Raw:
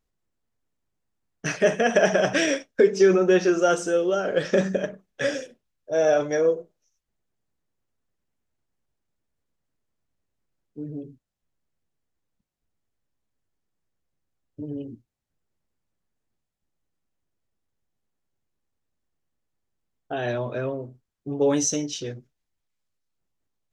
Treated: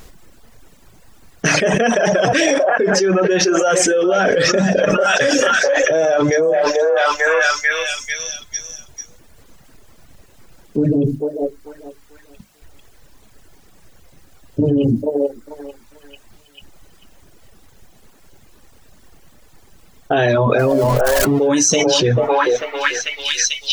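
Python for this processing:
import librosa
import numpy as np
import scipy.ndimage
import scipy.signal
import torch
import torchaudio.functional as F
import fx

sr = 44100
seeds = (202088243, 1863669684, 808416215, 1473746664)

y = fx.zero_step(x, sr, step_db=-39.0, at=(20.59, 21.48))
y = fx.hum_notches(y, sr, base_hz=50, count=6)
y = fx.dereverb_blind(y, sr, rt60_s=1.6)
y = fx.echo_stepped(y, sr, ms=443, hz=720.0, octaves=0.7, feedback_pct=70, wet_db=-9.0)
y = fx.env_flatten(y, sr, amount_pct=100)
y = y * librosa.db_to_amplitude(-1.5)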